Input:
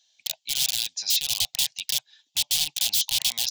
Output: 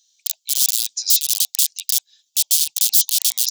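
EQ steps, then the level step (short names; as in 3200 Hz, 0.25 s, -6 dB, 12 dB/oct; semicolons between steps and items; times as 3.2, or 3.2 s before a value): tone controls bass -10 dB, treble +12 dB; high shelf 3100 Hz +12 dB; -12.5 dB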